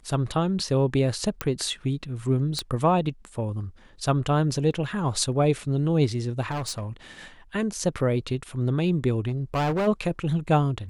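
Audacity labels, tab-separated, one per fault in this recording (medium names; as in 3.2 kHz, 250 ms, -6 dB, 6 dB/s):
1.410000	1.410000	pop -11 dBFS
2.590000	2.590000	pop -13 dBFS
6.500000	6.880000	clipped -26.5 dBFS
9.270000	9.880000	clipped -21.5 dBFS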